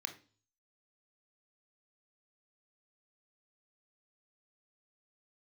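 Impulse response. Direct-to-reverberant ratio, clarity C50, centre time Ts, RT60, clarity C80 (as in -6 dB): 6.5 dB, 12.5 dB, 9 ms, 0.40 s, 18.0 dB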